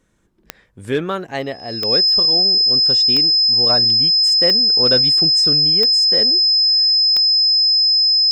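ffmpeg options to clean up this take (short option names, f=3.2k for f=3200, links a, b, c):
-af "adeclick=t=4,bandreject=f=5.1k:w=30"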